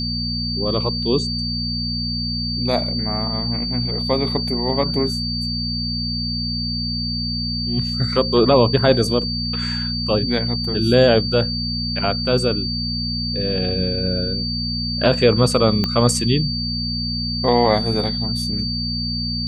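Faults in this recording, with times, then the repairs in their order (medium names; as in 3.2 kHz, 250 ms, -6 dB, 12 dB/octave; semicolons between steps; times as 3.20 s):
hum 60 Hz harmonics 4 -26 dBFS
whine 4.6 kHz -24 dBFS
15.84 s: pop -7 dBFS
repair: de-click; de-hum 60 Hz, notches 4; band-stop 4.6 kHz, Q 30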